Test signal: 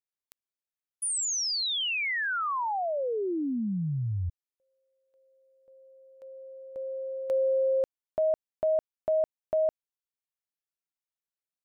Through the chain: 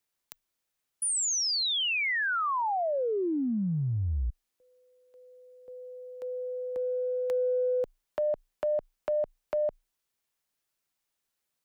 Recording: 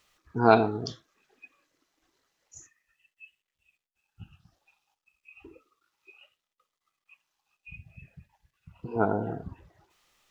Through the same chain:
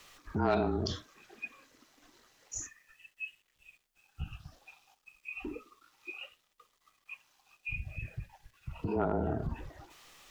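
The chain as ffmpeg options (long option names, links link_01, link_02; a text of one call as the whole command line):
ffmpeg -i in.wav -af "afreqshift=-29,aeval=exprs='0.75*(cos(1*acos(clip(val(0)/0.75,-1,1)))-cos(1*PI/2))+0.0668*(cos(5*acos(clip(val(0)/0.75,-1,1)))-cos(5*PI/2))':channel_layout=same,acompressor=threshold=-39dB:ratio=3:attack=1.1:release=76:knee=6:detection=peak,volume=8dB" out.wav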